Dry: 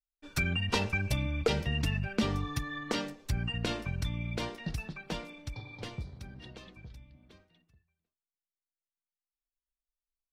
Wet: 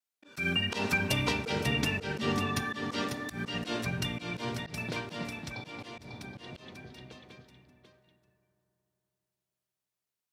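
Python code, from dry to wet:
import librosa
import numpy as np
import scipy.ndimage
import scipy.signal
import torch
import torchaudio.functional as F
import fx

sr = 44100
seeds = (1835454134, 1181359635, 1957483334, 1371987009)

y = scipy.signal.sosfilt(scipy.signal.butter(2, 180.0, 'highpass', fs=sr, output='sos'), x)
y = y + 10.0 ** (-6.5 / 20.0) * np.pad(y, (int(544 * sr / 1000.0), 0))[:len(y)]
y = fx.rev_fdn(y, sr, rt60_s=3.4, lf_ratio=1.0, hf_ratio=0.35, size_ms=24.0, drr_db=10.0)
y = fx.vibrato(y, sr, rate_hz=0.32, depth_cents=8.2)
y = fx.auto_swell(y, sr, attack_ms=116.0)
y = y * librosa.db_to_amplitude(5.0)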